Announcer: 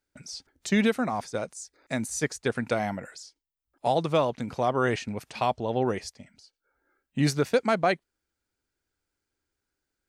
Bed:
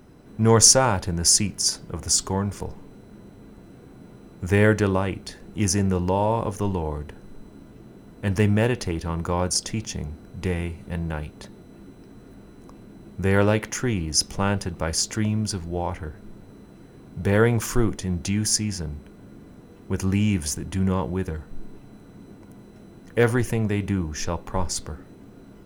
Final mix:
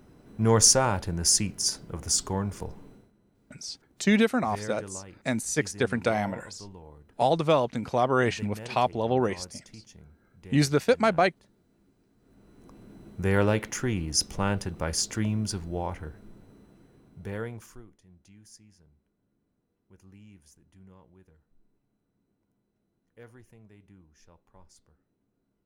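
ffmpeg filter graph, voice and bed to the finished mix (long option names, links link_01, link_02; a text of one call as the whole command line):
ffmpeg -i stem1.wav -i stem2.wav -filter_complex "[0:a]adelay=3350,volume=1.5dB[link_01];[1:a]volume=12dB,afade=type=out:start_time=2.88:duration=0.24:silence=0.158489,afade=type=in:start_time=12.18:duration=0.73:silence=0.149624,afade=type=out:start_time=15.66:duration=2.19:silence=0.0473151[link_02];[link_01][link_02]amix=inputs=2:normalize=0" out.wav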